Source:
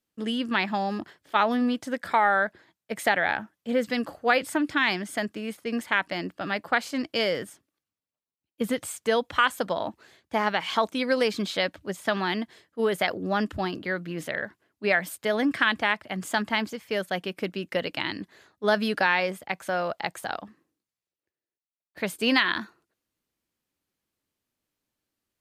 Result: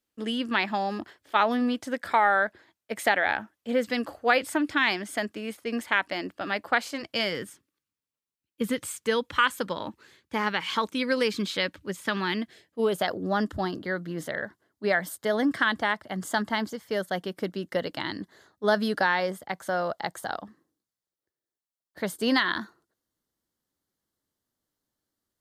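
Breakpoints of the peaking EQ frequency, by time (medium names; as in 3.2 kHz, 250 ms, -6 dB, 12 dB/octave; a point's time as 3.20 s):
peaking EQ -14.5 dB 0.33 oct
6.82 s 160 Hz
7.40 s 690 Hz
12.32 s 690 Hz
13.09 s 2.5 kHz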